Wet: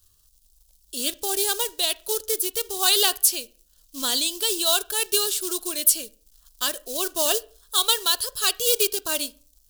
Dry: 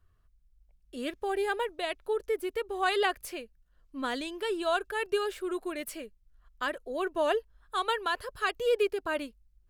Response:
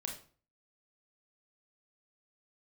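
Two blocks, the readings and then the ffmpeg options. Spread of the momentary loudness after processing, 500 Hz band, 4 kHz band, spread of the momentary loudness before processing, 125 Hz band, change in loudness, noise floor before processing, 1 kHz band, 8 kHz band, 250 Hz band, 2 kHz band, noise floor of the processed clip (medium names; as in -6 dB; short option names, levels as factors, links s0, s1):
8 LU, +0.5 dB, +16.5 dB, 11 LU, no reading, +10.0 dB, -66 dBFS, 0.0 dB, +26.5 dB, +0.5 dB, +1.0 dB, -61 dBFS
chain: -filter_complex "[0:a]acrusher=bits=5:mode=log:mix=0:aa=0.000001,aexciter=amount=11.3:drive=7.1:freq=3200,asplit=2[s0][s1];[1:a]atrim=start_sample=2205,lowpass=2500[s2];[s1][s2]afir=irnorm=-1:irlink=0,volume=0.251[s3];[s0][s3]amix=inputs=2:normalize=0,volume=0.891"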